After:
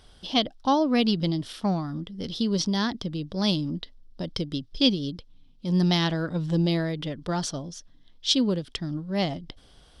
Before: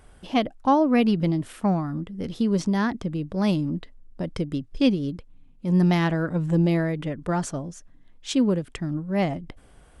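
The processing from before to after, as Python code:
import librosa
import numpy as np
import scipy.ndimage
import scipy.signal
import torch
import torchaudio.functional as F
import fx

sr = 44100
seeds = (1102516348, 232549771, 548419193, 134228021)

y = fx.band_shelf(x, sr, hz=4200.0, db=14.0, octaves=1.1)
y = y * librosa.db_to_amplitude(-3.0)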